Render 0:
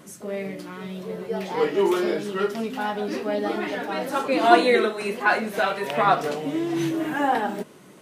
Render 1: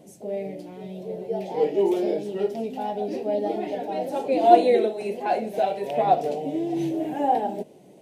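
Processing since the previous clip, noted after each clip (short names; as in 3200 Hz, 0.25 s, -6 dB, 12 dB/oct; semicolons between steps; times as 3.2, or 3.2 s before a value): EQ curve 230 Hz 0 dB, 770 Hz +6 dB, 1200 Hz -21 dB, 2400 Hz -6 dB; gain -3 dB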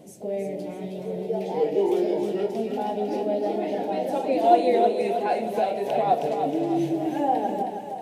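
in parallel at +1.5 dB: compressor, threshold -29 dBFS, peak gain reduction 19.5 dB; on the sum: split-band echo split 550 Hz, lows 0.151 s, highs 0.316 s, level -6 dB; gain -4.5 dB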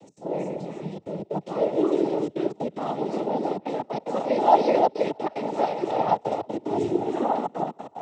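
step gate "x.xxxxxxxxxx.xx." 185 bpm -24 dB; noise vocoder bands 12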